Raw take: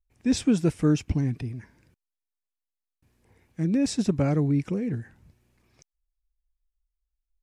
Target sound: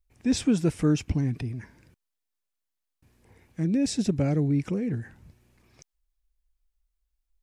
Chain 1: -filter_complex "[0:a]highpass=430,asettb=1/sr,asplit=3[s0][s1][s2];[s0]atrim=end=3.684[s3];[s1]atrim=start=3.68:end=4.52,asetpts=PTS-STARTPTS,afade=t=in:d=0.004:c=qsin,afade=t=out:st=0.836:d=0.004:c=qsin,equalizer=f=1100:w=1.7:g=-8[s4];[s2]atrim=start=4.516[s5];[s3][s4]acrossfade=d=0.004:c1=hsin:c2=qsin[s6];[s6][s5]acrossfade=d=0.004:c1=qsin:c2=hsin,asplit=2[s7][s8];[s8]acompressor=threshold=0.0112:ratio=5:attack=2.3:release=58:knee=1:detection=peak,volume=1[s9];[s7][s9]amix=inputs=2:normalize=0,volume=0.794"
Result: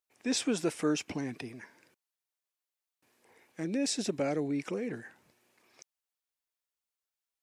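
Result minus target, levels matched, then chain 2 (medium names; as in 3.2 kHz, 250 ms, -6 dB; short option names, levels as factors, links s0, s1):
500 Hz band +5.0 dB
-filter_complex "[0:a]asettb=1/sr,asplit=3[s0][s1][s2];[s0]atrim=end=3.684[s3];[s1]atrim=start=3.68:end=4.52,asetpts=PTS-STARTPTS,afade=t=in:d=0.004:c=qsin,afade=t=out:st=0.836:d=0.004:c=qsin,equalizer=f=1100:w=1.7:g=-8[s4];[s2]atrim=start=4.516[s5];[s3][s4]acrossfade=d=0.004:c1=hsin:c2=qsin[s6];[s6][s5]acrossfade=d=0.004:c1=qsin:c2=hsin,asplit=2[s7][s8];[s8]acompressor=threshold=0.0112:ratio=5:attack=2.3:release=58:knee=1:detection=peak,volume=1[s9];[s7][s9]amix=inputs=2:normalize=0,volume=0.794"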